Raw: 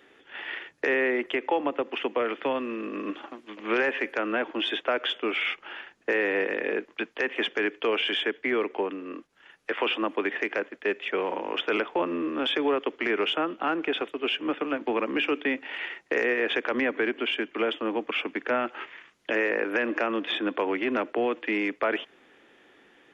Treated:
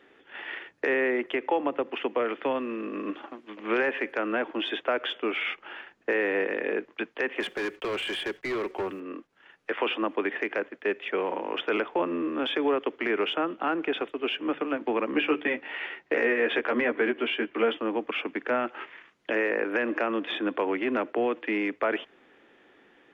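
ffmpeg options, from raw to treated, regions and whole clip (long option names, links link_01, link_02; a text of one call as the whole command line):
ffmpeg -i in.wav -filter_complex "[0:a]asettb=1/sr,asplit=3[link_01][link_02][link_03];[link_01]atrim=end=7.404[link_04];[link_02]atrim=start=7.4:end=9,asetpts=PTS-STARTPTS,afade=type=in:duration=0.004:curve=qsin,afade=type=out:start_time=1.596:duration=0.004:curve=qsin,acrusher=bits=8:mix=0:aa=0.5,aecho=1:1:5.4:0.43,atrim=end_sample=70560,volume=26.5dB,asoftclip=hard,volume=-26.5dB[link_05];[link_03]atrim=start=8.996[link_06];[link_04][link_05]acrossfade=duration=0.004:curve1=hsin:curve2=qsin[link_07];[link_07][link_06]acrossfade=duration=0.004:curve1=qsin:curve2=hsin,asettb=1/sr,asplit=3[link_08][link_09][link_10];[link_08]atrim=end=15.124[link_11];[link_09]atrim=start=15.12:end=17.77,asetpts=PTS-STARTPTS,afade=type=in:duration=0.004:curve=qsin,afade=type=out:start_time=2.646:duration=0.004:curve=qsin,lowpass=5000,asplit=2[link_12][link_13];[link_13]adelay=13,volume=-3.5dB[link_14];[link_12][link_14]amix=inputs=2:normalize=0,atrim=end_sample=116865[link_15];[link_10]atrim=start=17.766[link_16];[link_11][link_15]acrossfade=duration=0.004:curve1=hsin:curve2=qsin[link_17];[link_17][link_16]acrossfade=duration=0.004:curve1=qsin:curve2=hsin,highshelf=frequency=4500:gain=-11,bandreject=frequency=50:width_type=h:width=6,bandreject=frequency=100:width_type=h:width=6,bandreject=frequency=150:width_type=h:width=6" out.wav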